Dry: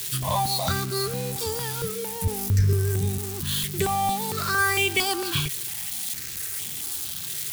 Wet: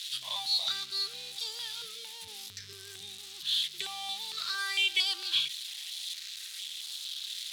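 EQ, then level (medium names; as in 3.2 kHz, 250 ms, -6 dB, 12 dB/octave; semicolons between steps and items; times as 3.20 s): band-pass filter 3.7 kHz, Q 3.4; +4.0 dB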